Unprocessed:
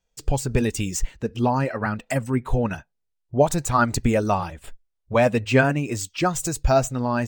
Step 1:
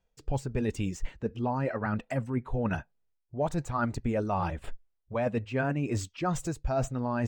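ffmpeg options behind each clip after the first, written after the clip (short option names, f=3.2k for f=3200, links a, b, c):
-af "lowpass=f=1.8k:p=1,areverse,acompressor=threshold=-30dB:ratio=6,areverse,volume=3dB"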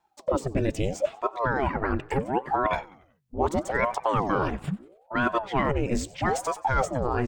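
-filter_complex "[0:a]asplit=5[a][b][c][d][e];[b]adelay=93,afreqshift=49,volume=-21dB[f];[c]adelay=186,afreqshift=98,volume=-27.2dB[g];[d]adelay=279,afreqshift=147,volume=-33.4dB[h];[e]adelay=372,afreqshift=196,volume=-39.6dB[i];[a][f][g][h][i]amix=inputs=5:normalize=0,aeval=exprs='val(0)*sin(2*PI*490*n/s+490*0.75/0.76*sin(2*PI*0.76*n/s))':c=same,volume=7dB"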